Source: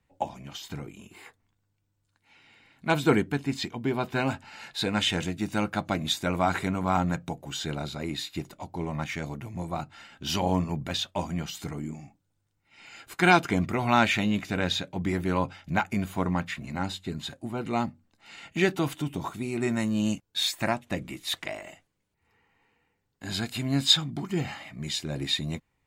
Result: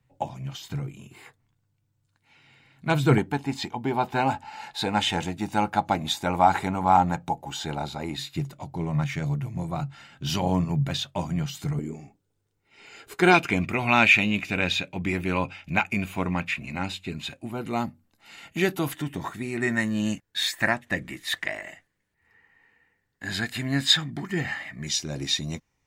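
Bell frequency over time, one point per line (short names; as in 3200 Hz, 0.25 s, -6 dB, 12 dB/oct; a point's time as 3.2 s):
bell +14.5 dB 0.34 oct
130 Hz
from 3.18 s 840 Hz
from 8.16 s 140 Hz
from 11.79 s 420 Hz
from 13.34 s 2500 Hz
from 17.51 s 12000 Hz
from 18.92 s 1800 Hz
from 24.87 s 5800 Hz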